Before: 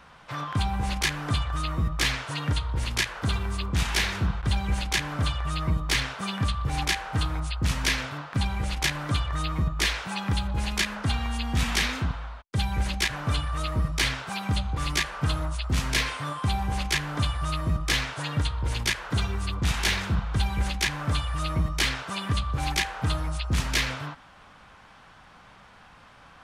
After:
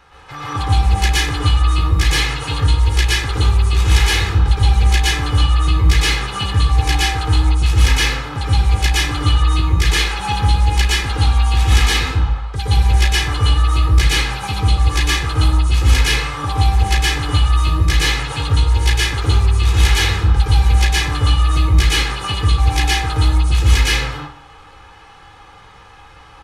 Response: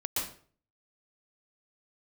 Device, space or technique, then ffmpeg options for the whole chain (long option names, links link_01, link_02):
microphone above a desk: -filter_complex "[0:a]aecho=1:1:2.4:0.67[link_01];[1:a]atrim=start_sample=2205[link_02];[link_01][link_02]afir=irnorm=-1:irlink=0,volume=2dB"